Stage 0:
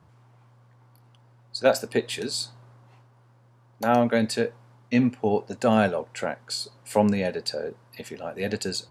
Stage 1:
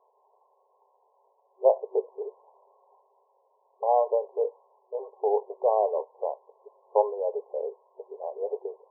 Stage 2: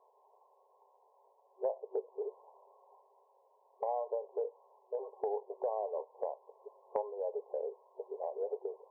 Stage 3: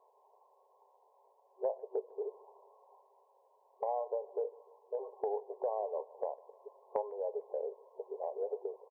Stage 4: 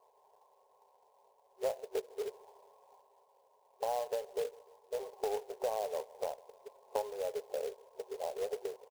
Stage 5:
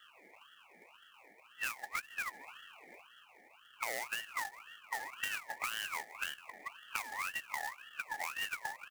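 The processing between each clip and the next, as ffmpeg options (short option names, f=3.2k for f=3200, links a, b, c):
-af "afftfilt=real='re*between(b*sr/4096,380,1100)':imag='im*between(b*sr/4096,380,1100)':win_size=4096:overlap=0.75"
-af "acompressor=threshold=-33dB:ratio=4,volume=-1dB"
-af "aecho=1:1:151|302|453|604:0.075|0.0412|0.0227|0.0125"
-af "acrusher=bits=3:mode=log:mix=0:aa=0.000001"
-filter_complex "[0:a]acrossover=split=160|3000[a][b][c];[b]acompressor=threshold=-44dB:ratio=6[d];[a][d][c]amix=inputs=3:normalize=0,aeval=exprs='val(0)*sin(2*PI*1800*n/s+1800*0.3/1.9*sin(2*PI*1.9*n/s))':c=same,volume=9.5dB"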